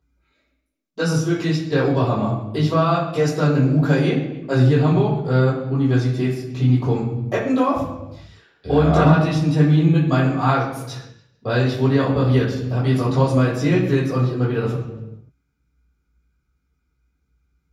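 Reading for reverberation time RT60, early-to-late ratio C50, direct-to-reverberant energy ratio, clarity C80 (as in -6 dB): not exponential, 4.5 dB, -8.0 dB, 7.0 dB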